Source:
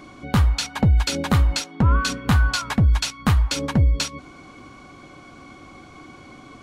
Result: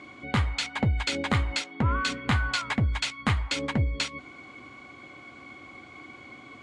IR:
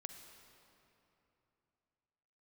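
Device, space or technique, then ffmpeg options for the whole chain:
car door speaker: -af "highpass=86,equalizer=frequency=170:width_type=q:width=4:gain=-8,equalizer=frequency=2100:width_type=q:width=4:gain=9,equalizer=frequency=3200:width_type=q:width=4:gain=3,equalizer=frequency=5700:width_type=q:width=4:gain=-7,lowpass=frequency=8300:width=0.5412,lowpass=frequency=8300:width=1.3066,volume=-4.5dB"

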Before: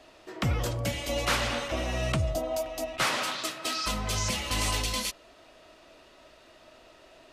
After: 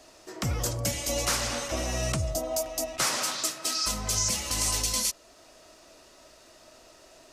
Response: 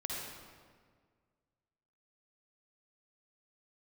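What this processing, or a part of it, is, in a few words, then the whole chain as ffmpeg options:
over-bright horn tweeter: -af "highshelf=frequency=4400:width_type=q:width=1.5:gain=8.5,alimiter=limit=-15.5dB:level=0:latency=1:release=434"

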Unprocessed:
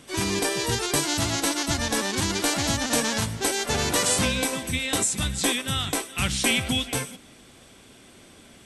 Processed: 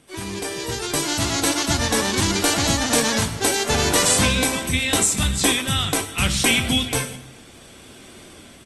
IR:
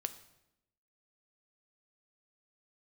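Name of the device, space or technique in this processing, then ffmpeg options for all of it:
speakerphone in a meeting room: -filter_complex "[1:a]atrim=start_sample=2205[link_01];[0:a][link_01]afir=irnorm=-1:irlink=0,asplit=2[link_02][link_03];[link_03]adelay=400,highpass=300,lowpass=3400,asoftclip=type=hard:threshold=-19.5dB,volume=-28dB[link_04];[link_02][link_04]amix=inputs=2:normalize=0,dynaudnorm=framelen=300:gausssize=7:maxgain=15dB,volume=-3.5dB" -ar 48000 -c:a libopus -b:a 32k

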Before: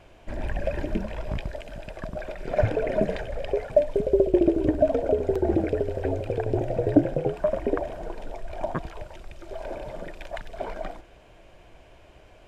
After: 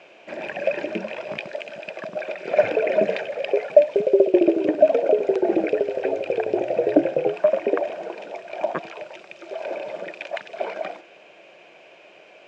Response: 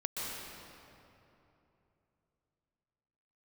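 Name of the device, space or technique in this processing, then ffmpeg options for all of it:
television speaker: -af "highpass=frequency=220:width=0.5412,highpass=frequency=220:width=1.3066,equalizer=frequency=260:width_type=q:width=4:gain=-10,equalizer=frequency=560:width_type=q:width=4:gain=3,equalizer=frequency=990:width_type=q:width=4:gain=-3,equalizer=frequency=2500:width_type=q:width=4:gain=9,lowpass=frequency=6700:width=0.5412,lowpass=frequency=6700:width=1.3066,volume=4.5dB"

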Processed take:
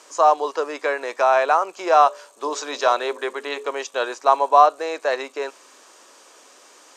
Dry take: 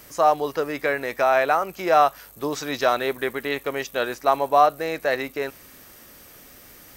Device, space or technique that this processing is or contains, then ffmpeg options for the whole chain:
phone speaker on a table: -filter_complex "[0:a]highpass=frequency=350:width=0.5412,highpass=frequency=350:width=1.3066,equalizer=frequency=1000:width_type=q:width=4:gain=8,equalizer=frequency=2000:width_type=q:width=4:gain=-6,equalizer=frequency=7000:width_type=q:width=4:gain=6,lowpass=frequency=8200:width=0.5412,lowpass=frequency=8200:width=1.3066,asettb=1/sr,asplit=3[link_01][link_02][link_03];[link_01]atrim=end=1.964[link_04];[link_02]atrim=start=1.96:end=3.69,asetpts=PTS-STARTPTS,afade=type=in:duration=0.004:curve=qsin,afade=type=out:start_time=1.726:duration=0.004:curve=qsin,bandreject=frequency=53.15:width_type=h:width=4,bandreject=frequency=106.3:width_type=h:width=4,bandreject=frequency=159.45:width_type=h:width=4,bandreject=frequency=212.6:width_type=h:width=4,bandreject=frequency=265.75:width_type=h:width=4,bandreject=frequency=318.9:width_type=h:width=4,bandreject=frequency=372.05:width_type=h:width=4,bandreject=frequency=425.2:width_type=h:width=4,bandreject=frequency=478.35:width_type=h:width=4,bandreject=frequency=531.5:width_type=h:width=4,bandreject=frequency=584.65:width_type=h:width=4[link_05];[link_03]atrim=start=3.686[link_06];[link_04][link_05]acrossfade=duration=0.004:curve1=hsin:curve2=qsin[link_07];[link_07][link_06]acrossfade=duration=0.004:curve1=qsin:curve2=hsin,volume=1dB"

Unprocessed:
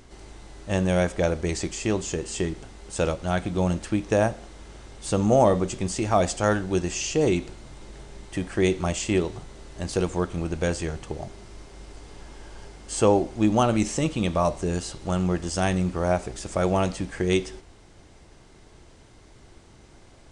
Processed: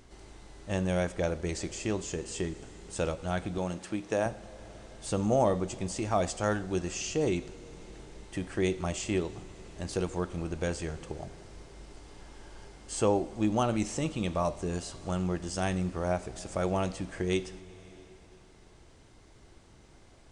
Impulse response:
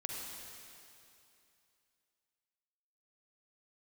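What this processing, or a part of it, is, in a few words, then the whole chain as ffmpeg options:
compressed reverb return: -filter_complex "[0:a]asplit=2[link_01][link_02];[1:a]atrim=start_sample=2205[link_03];[link_02][link_03]afir=irnorm=-1:irlink=0,acompressor=threshold=-29dB:ratio=6,volume=-9dB[link_04];[link_01][link_04]amix=inputs=2:normalize=0,asettb=1/sr,asplit=3[link_05][link_06][link_07];[link_05]atrim=end=3.584[link_08];[link_06]atrim=start=3.58:end=4.26,asetpts=PTS-STARTPTS,afade=type=in:duration=0.004:curve=qsin,afade=type=out:start_time=0.676:duration=0.004:curve=qsin,highpass=frequency=230:poles=1[link_09];[link_07]atrim=start=4.256[link_10];[link_08][link_09]acrossfade=duration=0.004:curve1=hsin:curve2=qsin[link_11];[link_11][link_10]acrossfade=duration=0.004:curve1=qsin:curve2=hsin,volume=-7.5dB"

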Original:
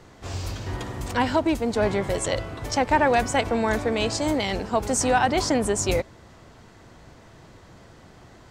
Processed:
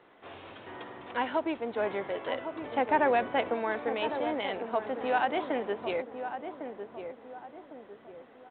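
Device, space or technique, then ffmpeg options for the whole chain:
telephone: -filter_complex "[0:a]asettb=1/sr,asplit=3[link_01][link_02][link_03];[link_01]atrim=end=2.544[link_04];[link_02]atrim=start=2.54:end=3.54,asetpts=PTS-STARTPTS,afade=type=in:duration=0.004:curve=qsin,afade=type=out:start_time=0.996:duration=0.004:curve=qsin,lowshelf=frequency=420:gain=6.5[link_05];[link_03]atrim=start=3.536[link_06];[link_04][link_05]acrossfade=duration=0.004:curve1=hsin:curve2=qsin[link_07];[link_07][link_06]acrossfade=duration=0.004:curve1=qsin:curve2=hsin,highpass=340,lowpass=3600,asplit=2[link_08][link_09];[link_09]adelay=1104,lowpass=frequency=1100:poles=1,volume=-7.5dB,asplit=2[link_10][link_11];[link_11]adelay=1104,lowpass=frequency=1100:poles=1,volume=0.44,asplit=2[link_12][link_13];[link_13]adelay=1104,lowpass=frequency=1100:poles=1,volume=0.44,asplit=2[link_14][link_15];[link_15]adelay=1104,lowpass=frequency=1100:poles=1,volume=0.44,asplit=2[link_16][link_17];[link_17]adelay=1104,lowpass=frequency=1100:poles=1,volume=0.44[link_18];[link_08][link_10][link_12][link_14][link_16][link_18]amix=inputs=6:normalize=0,volume=-6.5dB" -ar 8000 -c:a pcm_alaw

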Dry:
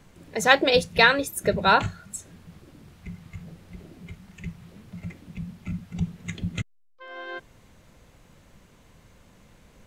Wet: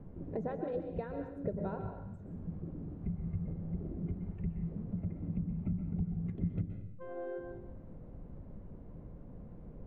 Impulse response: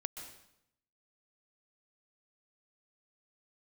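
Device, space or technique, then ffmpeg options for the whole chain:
television next door: -filter_complex "[0:a]acompressor=threshold=-38dB:ratio=5,lowpass=490[link_01];[1:a]atrim=start_sample=2205[link_02];[link_01][link_02]afir=irnorm=-1:irlink=0,volume=7.5dB"

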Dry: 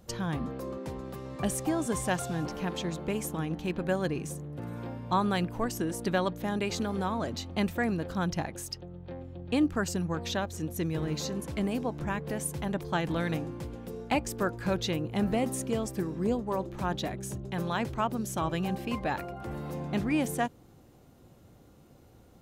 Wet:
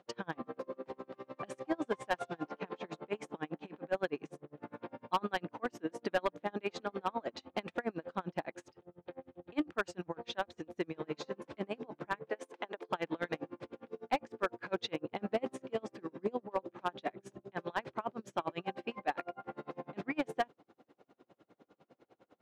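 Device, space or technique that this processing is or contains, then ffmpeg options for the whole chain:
helicopter radio: -filter_complex "[0:a]asettb=1/sr,asplit=3[link_01][link_02][link_03];[link_01]atrim=end=12.304[link_04];[link_02]atrim=start=12.3:end=12.89,asetpts=PTS-STARTPTS,afade=type=in:duration=0.004:curve=qsin,afade=type=out:start_time=0.586:duration=0.004:curve=qsin,highpass=frequency=270:width=0.5412,highpass=frequency=270:width=1.3066[link_05];[link_03]atrim=start=12.886[link_06];[link_04][link_05]acrossfade=duration=0.004:curve1=hsin:curve2=qsin[link_07];[link_07][link_06]acrossfade=duration=0.004:curve1=qsin:curve2=hsin,highpass=350,lowpass=2800,aeval=exprs='val(0)*pow(10,-34*(0.5-0.5*cos(2*PI*9.9*n/s))/20)':channel_layout=same,asoftclip=type=hard:threshold=-26.5dB,volume=3.5dB"

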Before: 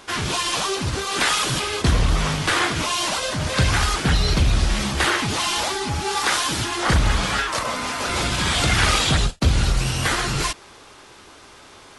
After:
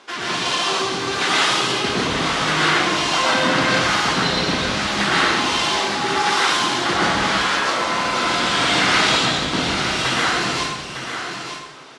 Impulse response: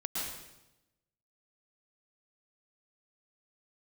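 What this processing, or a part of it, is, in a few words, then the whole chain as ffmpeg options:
supermarket ceiling speaker: -filter_complex "[0:a]asettb=1/sr,asplit=3[link_01][link_02][link_03];[link_01]atrim=end=3.134[link_04];[link_02]atrim=start=3.13:end=3.55,asetpts=PTS-STARTPTS,afade=type=in:duration=0.004:curve=qsin,afade=type=out:start_time=0.416:duration=0.004:curve=qsin,equalizer=frequency=250:width_type=o:width=1:gain=10,equalizer=frequency=1000:width_type=o:width=1:gain=6,equalizer=frequency=2000:width_type=o:width=1:gain=5[link_05];[link_03]atrim=start=3.546[link_06];[link_04][link_05]acrossfade=duration=0.004:curve1=hsin:curve2=qsin[link_07];[link_07][link_06]acrossfade=duration=0.004:curve1=qsin:curve2=hsin,highpass=250,lowpass=5800[link_08];[1:a]atrim=start_sample=2205[link_09];[link_08][link_09]afir=irnorm=-1:irlink=0,aecho=1:1:905:0.398"

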